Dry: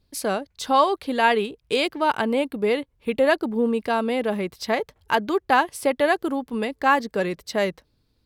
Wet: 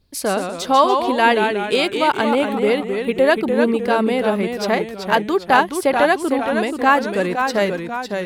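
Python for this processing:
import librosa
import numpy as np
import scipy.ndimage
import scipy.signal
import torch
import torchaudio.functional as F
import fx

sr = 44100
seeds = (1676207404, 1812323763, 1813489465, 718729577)

y = fx.echo_pitch(x, sr, ms=108, semitones=-1, count=3, db_per_echo=-6.0)
y = y * librosa.db_to_amplitude(4.0)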